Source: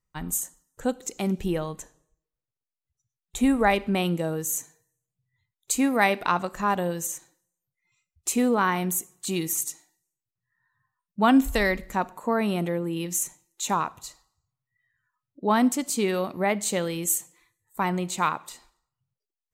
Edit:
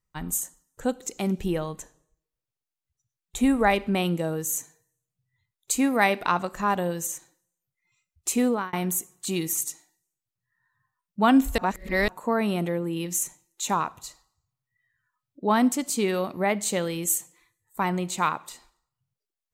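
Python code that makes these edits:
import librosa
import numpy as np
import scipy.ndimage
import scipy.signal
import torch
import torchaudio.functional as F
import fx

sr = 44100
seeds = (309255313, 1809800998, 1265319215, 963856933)

y = fx.edit(x, sr, fx.fade_out_span(start_s=8.47, length_s=0.26),
    fx.reverse_span(start_s=11.58, length_s=0.5), tone=tone)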